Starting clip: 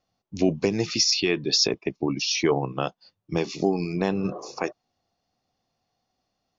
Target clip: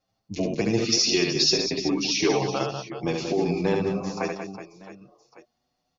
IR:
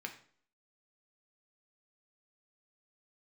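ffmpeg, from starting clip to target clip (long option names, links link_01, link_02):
-filter_complex "[0:a]aecho=1:1:80|208|412.8|740.5|1265:0.631|0.398|0.251|0.158|0.1,atempo=1.1,asplit=2[link_01][link_02];[link_02]adelay=7.2,afreqshift=0.45[link_03];[link_01][link_03]amix=inputs=2:normalize=1,volume=2dB"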